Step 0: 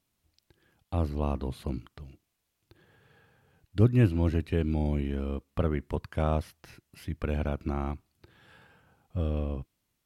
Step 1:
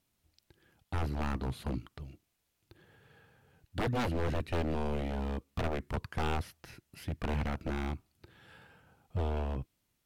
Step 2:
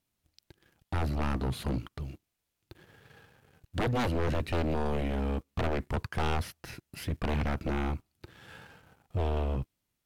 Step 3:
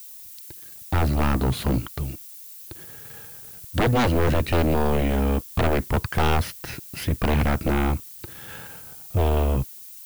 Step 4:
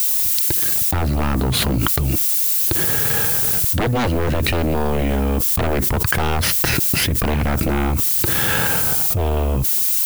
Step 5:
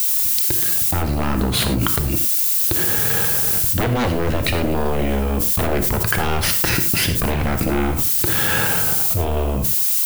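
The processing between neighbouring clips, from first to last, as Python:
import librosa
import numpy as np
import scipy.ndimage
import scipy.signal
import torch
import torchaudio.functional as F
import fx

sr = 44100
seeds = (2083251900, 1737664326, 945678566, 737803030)

y1 = 10.0 ** (-26.0 / 20.0) * (np.abs((x / 10.0 ** (-26.0 / 20.0) + 3.0) % 4.0 - 2.0) - 1.0)
y1 = fx.notch(y1, sr, hz=1100.0, q=22.0)
y2 = fx.leveller(y1, sr, passes=2)
y3 = fx.dmg_noise_colour(y2, sr, seeds[0], colour='violet', level_db=-51.0)
y3 = y3 * librosa.db_to_amplitude(9.0)
y4 = fx.env_flatten(y3, sr, amount_pct=100)
y5 = fx.rev_gated(y4, sr, seeds[1], gate_ms=130, shape='flat', drr_db=6.5)
y5 = y5 * librosa.db_to_amplitude(-1.0)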